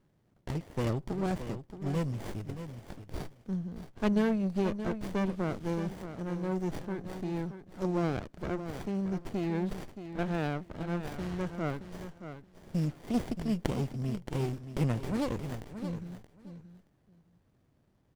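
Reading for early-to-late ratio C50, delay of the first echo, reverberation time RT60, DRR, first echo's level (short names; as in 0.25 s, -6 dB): none, 0.625 s, none, none, -10.5 dB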